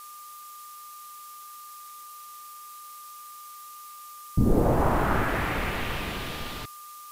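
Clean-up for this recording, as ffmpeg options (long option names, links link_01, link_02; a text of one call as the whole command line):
ffmpeg -i in.wav -af "adeclick=threshold=4,bandreject=frequency=1200:width=30,afftdn=noise_reduction=28:noise_floor=-44" out.wav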